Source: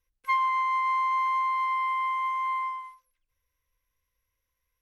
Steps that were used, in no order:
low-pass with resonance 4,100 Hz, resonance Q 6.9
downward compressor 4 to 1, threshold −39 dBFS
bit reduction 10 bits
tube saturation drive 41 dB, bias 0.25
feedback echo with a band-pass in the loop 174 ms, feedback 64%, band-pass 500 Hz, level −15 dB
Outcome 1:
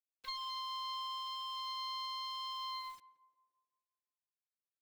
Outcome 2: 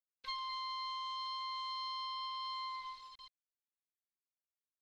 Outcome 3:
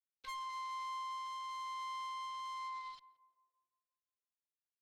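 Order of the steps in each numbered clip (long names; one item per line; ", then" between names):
tube saturation, then low-pass with resonance, then bit reduction, then downward compressor, then feedback echo with a band-pass in the loop
feedback echo with a band-pass in the loop, then downward compressor, then tube saturation, then bit reduction, then low-pass with resonance
downward compressor, then bit reduction, then low-pass with resonance, then tube saturation, then feedback echo with a band-pass in the loop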